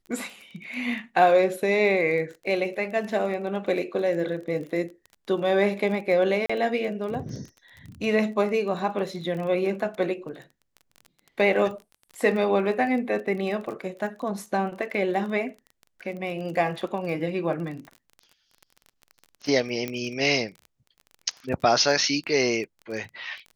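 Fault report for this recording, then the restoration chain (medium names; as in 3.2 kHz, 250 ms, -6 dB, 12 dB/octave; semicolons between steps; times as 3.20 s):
crackle 24 per s -34 dBFS
6.46–6.50 s: dropout 35 ms
19.88 s: pop -15 dBFS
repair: de-click; interpolate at 6.46 s, 35 ms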